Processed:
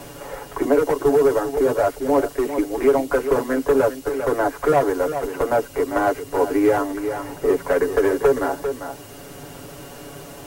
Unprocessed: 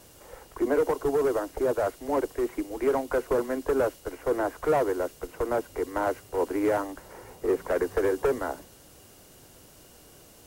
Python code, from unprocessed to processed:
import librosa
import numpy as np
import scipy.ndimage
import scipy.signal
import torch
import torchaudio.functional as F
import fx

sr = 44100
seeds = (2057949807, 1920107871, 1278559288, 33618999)

p1 = x + 0.79 * np.pad(x, (int(7.1 * sr / 1000.0), 0))[:len(x)]
p2 = p1 + fx.echo_single(p1, sr, ms=396, db=-12.0, dry=0)
p3 = fx.band_squash(p2, sr, depth_pct=40)
y = F.gain(torch.from_numpy(p3), 5.0).numpy()